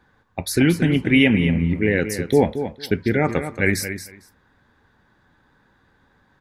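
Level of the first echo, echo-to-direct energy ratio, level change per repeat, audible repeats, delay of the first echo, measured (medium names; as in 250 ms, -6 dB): -10.0 dB, -10.0 dB, -16.0 dB, 2, 227 ms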